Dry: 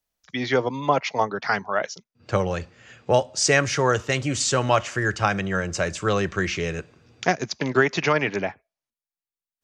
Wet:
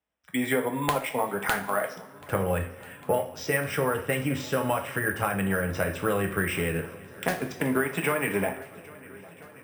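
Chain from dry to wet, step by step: 8.08–8.49 s: jump at every zero crossing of -31 dBFS; high-pass 75 Hz; compression 12:1, threshold -23 dBFS, peak gain reduction 11 dB; Savitzky-Golay filter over 25 samples; integer overflow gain 11.5 dB; two-slope reverb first 0.36 s, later 1.6 s, from -16 dB, DRR 3 dB; careless resampling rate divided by 4×, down none, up hold; on a send: shuffle delay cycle 1338 ms, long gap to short 1.5:1, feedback 60%, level -22 dB

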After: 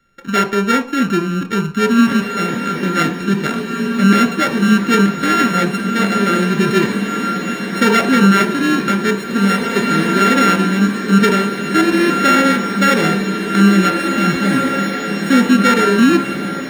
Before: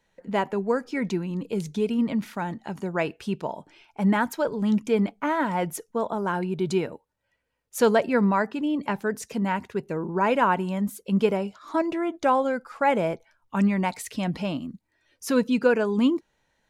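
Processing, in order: sorted samples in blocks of 32 samples; treble shelf 4.5 kHz -9 dB; echo that smears into a reverb 1973 ms, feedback 56%, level -5.5 dB; reverberation RT60 0.45 s, pre-delay 3 ms, DRR 9.5 dB; loudness maximiser +6.5 dB; trim -1 dB

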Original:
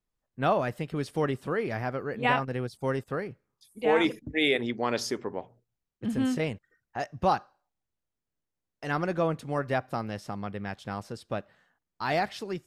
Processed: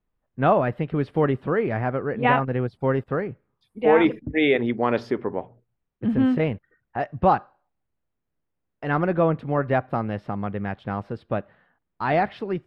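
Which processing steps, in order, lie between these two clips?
distance through air 470 m; trim +8 dB

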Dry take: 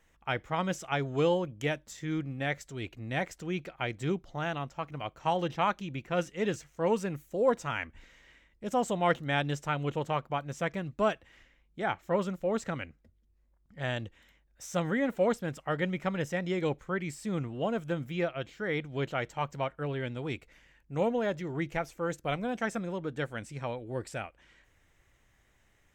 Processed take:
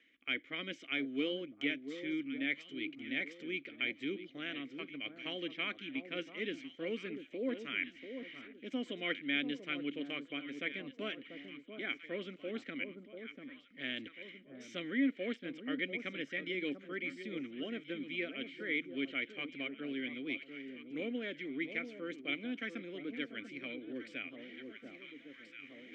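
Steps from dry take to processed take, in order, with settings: vowel filter i; in parallel at -1.5 dB: compression, threshold -55 dBFS, peak gain reduction 22.5 dB; on the sum: three-band isolator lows -17 dB, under 340 Hz, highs -14 dB, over 5.5 kHz; echo whose repeats swap between lows and highs 690 ms, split 1.1 kHz, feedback 55%, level -9 dB; reverse; upward compressor, threshold -52 dBFS; reverse; trim +9.5 dB

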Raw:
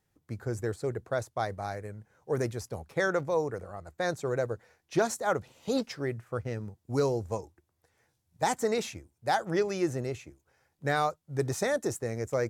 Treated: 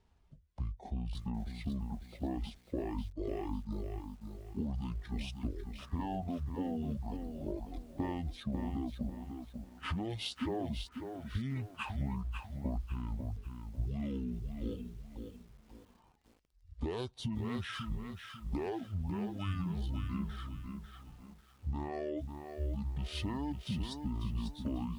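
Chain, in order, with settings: median filter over 3 samples; reverb removal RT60 1.3 s; tone controls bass +6 dB, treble -3 dB; peak limiter -27 dBFS, peak gain reduction 13.5 dB; compression 20:1, threshold -38 dBFS, peak gain reduction 9 dB; speed mistake 15 ips tape played at 7.5 ips; bit-crushed delay 546 ms, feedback 35%, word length 11-bit, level -6.5 dB; trim +4.5 dB

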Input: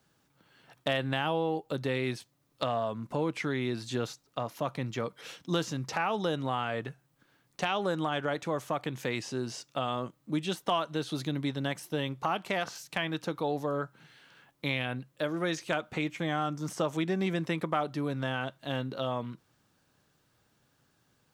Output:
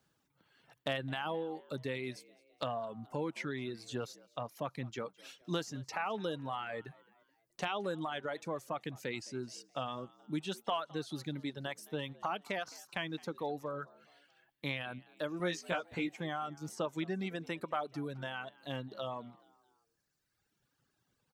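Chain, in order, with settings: reverb removal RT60 1.9 s; 15.38–16.14 s: doubling 17 ms -2.5 dB; frequency-shifting echo 213 ms, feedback 48%, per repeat +73 Hz, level -23 dB; trim -5.5 dB

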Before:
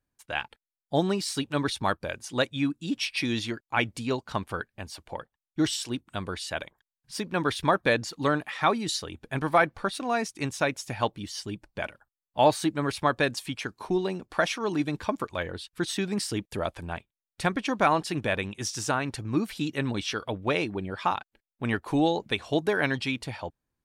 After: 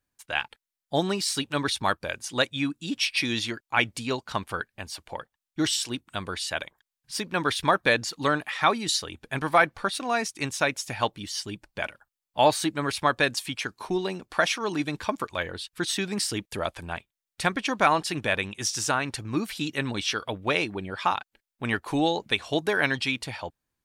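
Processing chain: tilt shelf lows -3.5 dB, about 920 Hz; trim +1.5 dB

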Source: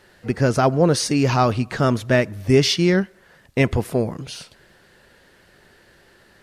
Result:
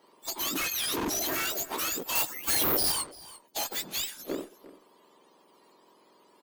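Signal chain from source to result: spectrum inverted on a logarithmic axis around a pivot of 1.3 kHz; high-pass 270 Hz 24 dB/octave; peak limiter -17 dBFS, peak gain reduction 10.5 dB; wavefolder -24.5 dBFS; Chebyshev shaper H 3 -16 dB, 6 -29 dB, 8 -43 dB, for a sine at -24.5 dBFS; delay 346 ms -17.5 dB; 2.15–2.92 s: careless resampling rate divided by 3×, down none, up zero stuff; 3.64–4.17 s: three bands expanded up and down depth 70%

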